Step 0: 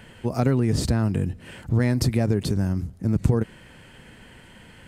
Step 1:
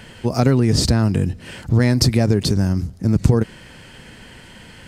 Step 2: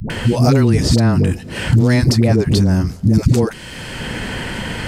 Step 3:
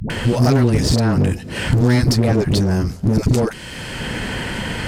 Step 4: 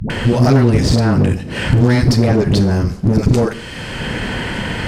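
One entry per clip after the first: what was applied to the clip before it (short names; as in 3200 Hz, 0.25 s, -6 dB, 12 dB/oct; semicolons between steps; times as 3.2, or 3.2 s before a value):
bell 5100 Hz +7.5 dB 0.93 oct; gain +5.5 dB
dispersion highs, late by 0.101 s, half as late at 400 Hz; three-band squash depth 70%; gain +3.5 dB
one-sided clip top -16 dBFS
high shelf 7100 Hz -9.5 dB; reverb RT60 0.60 s, pre-delay 30 ms, DRR 11.5 dB; gain +3 dB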